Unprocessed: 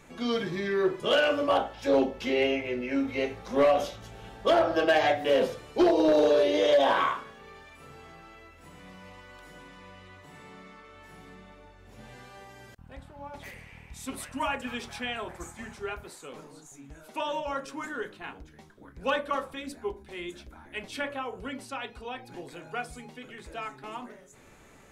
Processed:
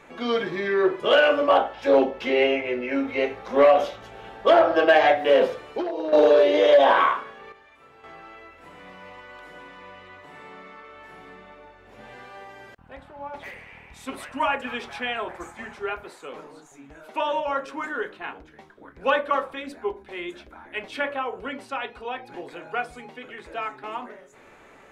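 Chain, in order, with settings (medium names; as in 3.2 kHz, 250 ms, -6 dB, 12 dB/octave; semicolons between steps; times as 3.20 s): tone controls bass -12 dB, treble -13 dB; 5.64–6.13 s: compression 8:1, threshold -33 dBFS, peak gain reduction 13.5 dB; 7.52–8.04 s: feedback comb 58 Hz, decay 0.87 s, harmonics all, mix 70%; trim +7 dB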